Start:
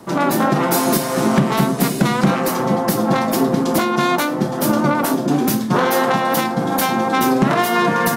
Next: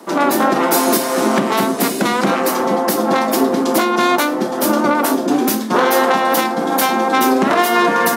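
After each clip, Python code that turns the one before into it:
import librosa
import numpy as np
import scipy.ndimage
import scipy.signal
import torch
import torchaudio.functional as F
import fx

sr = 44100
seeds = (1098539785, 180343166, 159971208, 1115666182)

y = scipy.signal.sosfilt(scipy.signal.butter(4, 240.0, 'highpass', fs=sr, output='sos'), x)
y = y * librosa.db_to_amplitude(3.0)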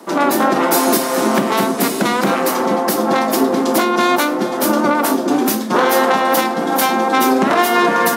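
y = x + 10.0 ** (-15.0 / 20.0) * np.pad(x, (int(417 * sr / 1000.0), 0))[:len(x)]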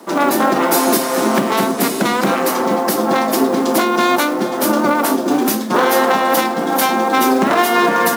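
y = fx.quant_companded(x, sr, bits=6)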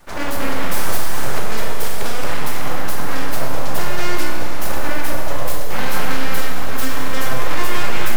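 y = np.abs(x)
y = fx.rev_schroeder(y, sr, rt60_s=2.3, comb_ms=30, drr_db=2.0)
y = y * librosa.db_to_amplitude(-7.5)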